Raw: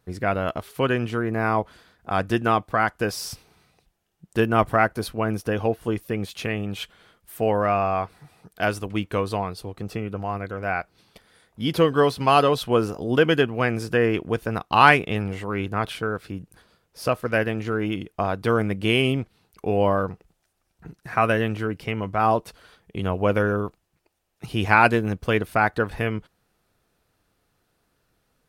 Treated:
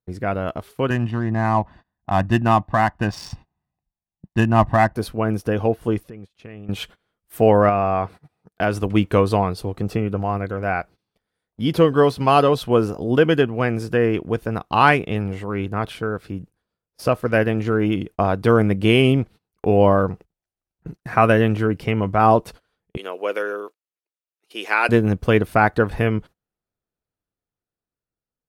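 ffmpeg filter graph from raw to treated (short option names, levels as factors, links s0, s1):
-filter_complex "[0:a]asettb=1/sr,asplit=3[s0][s1][s2];[s0]atrim=end=0.904[s3];[s1]atrim=start=0.9:end=4.96,asetpts=PTS-STARTPTS,afade=t=in:d=0.004:c=qsin,afade=t=out:st=4.056:d=0.004:c=qsin,aecho=1:1:1.1:0.75,atrim=end_sample=179046,adynamicsmooth=sensitivity=4.5:basefreq=2200[s4];[s2]atrim=start=4.956[s5];[s3][s4]acrossfade=d=0.004:c1=hsin:c2=qsin[s6];[s6][s5]acrossfade=d=0.004:c1=qsin:c2=hsin,asettb=1/sr,asplit=3[s7][s8][s9];[s7]atrim=end=6.034[s10];[s8]atrim=start=6.03:end=6.69,asetpts=PTS-STARTPTS,afade=t=in:d=0.004:c=qsin,afade=t=out:st=0.656:d=0.004:c=qsin,lowpass=11000,highshelf=f=5200:g=-7,acompressor=threshold=0.00631:ratio=3:attack=3.2:release=140:knee=1:detection=peak[s11];[s9]atrim=start=6.686[s12];[s10][s11]acrossfade=d=0.004:c1=hsin:c2=qsin[s13];[s13][s12]acrossfade=d=0.004:c1=qsin:c2=hsin,asettb=1/sr,asplit=3[s14][s15][s16];[s14]atrim=end=7.694[s17];[s15]atrim=start=7.69:end=8.83,asetpts=PTS-STARTPTS,afade=t=in:d=0.004:c=qsin,afade=t=out:st=1.136:d=0.004:c=qsin,highpass=62,highshelf=f=4700:g=-5.5,acompressor=threshold=0.0562:ratio=2:attack=3.2:release=140:knee=1:detection=peak[s18];[s16]atrim=start=8.826[s19];[s17][s18]acrossfade=d=0.004:c1=hsin:c2=qsin[s20];[s20][s19]acrossfade=d=0.004:c1=qsin:c2=hsin,asettb=1/sr,asplit=3[s21][s22][s23];[s21]atrim=end=22.974[s24];[s22]atrim=start=22.97:end=24.89,asetpts=PTS-STARTPTS,afade=t=in:d=0.004:c=qsin,afade=t=out:st=1.916:d=0.004:c=qsin,highpass=f=430:w=0.5412,highpass=f=430:w=1.3066,equalizer=f=770:w=0.84:g=-10.5[s25];[s23]atrim=start=24.886[s26];[s24][s25]acrossfade=d=0.004:c1=hsin:c2=qsin[s27];[s27][s26]acrossfade=d=0.004:c1=qsin:c2=hsin,agate=range=0.0631:threshold=0.00708:ratio=16:detection=peak,tiltshelf=f=970:g=3,dynaudnorm=f=400:g=9:m=3.76,volume=0.891"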